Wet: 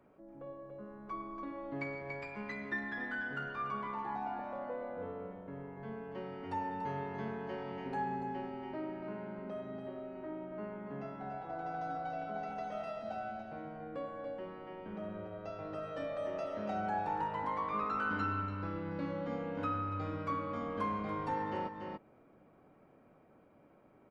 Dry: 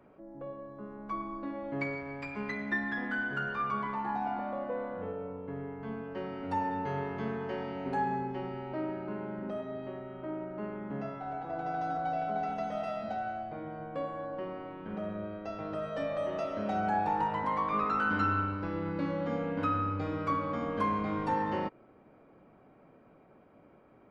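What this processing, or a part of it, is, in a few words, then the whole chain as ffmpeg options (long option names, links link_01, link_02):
ducked delay: -filter_complex "[0:a]asplit=3[link_01][link_02][link_03];[link_02]adelay=286,volume=-4dB[link_04];[link_03]apad=whole_len=1075773[link_05];[link_04][link_05]sidechaincompress=threshold=-35dB:ratio=8:attack=16:release=435[link_06];[link_01][link_06]amix=inputs=2:normalize=0,volume=-5.5dB"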